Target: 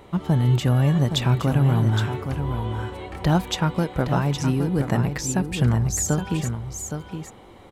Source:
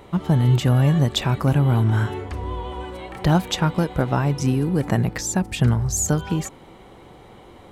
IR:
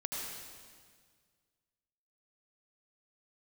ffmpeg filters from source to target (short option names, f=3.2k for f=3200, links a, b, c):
-af "aecho=1:1:817:0.398,volume=-2dB"